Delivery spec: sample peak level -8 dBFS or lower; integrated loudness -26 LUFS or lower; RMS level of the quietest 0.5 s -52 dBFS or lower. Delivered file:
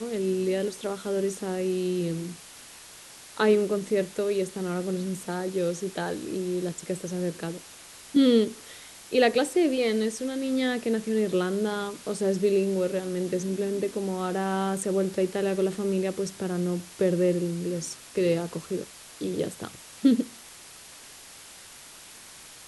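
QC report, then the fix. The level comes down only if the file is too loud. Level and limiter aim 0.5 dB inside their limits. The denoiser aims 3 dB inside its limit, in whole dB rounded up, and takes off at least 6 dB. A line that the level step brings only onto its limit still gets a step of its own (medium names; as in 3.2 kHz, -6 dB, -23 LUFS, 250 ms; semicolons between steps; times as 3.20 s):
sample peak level -8.5 dBFS: pass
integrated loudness -27.5 LUFS: pass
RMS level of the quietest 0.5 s -47 dBFS: fail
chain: noise reduction 8 dB, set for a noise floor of -47 dBFS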